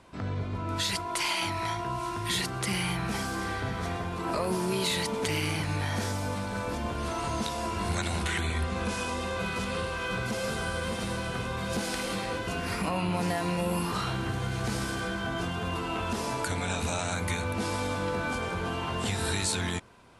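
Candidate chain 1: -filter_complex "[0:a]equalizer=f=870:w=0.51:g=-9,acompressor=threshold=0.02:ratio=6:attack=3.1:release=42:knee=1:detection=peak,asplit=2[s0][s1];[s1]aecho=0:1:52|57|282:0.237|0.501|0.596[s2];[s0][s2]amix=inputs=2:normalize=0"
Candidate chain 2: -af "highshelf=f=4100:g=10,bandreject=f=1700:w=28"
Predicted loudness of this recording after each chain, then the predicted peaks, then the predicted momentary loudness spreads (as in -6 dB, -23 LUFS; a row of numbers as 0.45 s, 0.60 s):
-35.0 LUFS, -28.5 LUFS; -20.5 dBFS, -10.0 dBFS; 3 LU, 7 LU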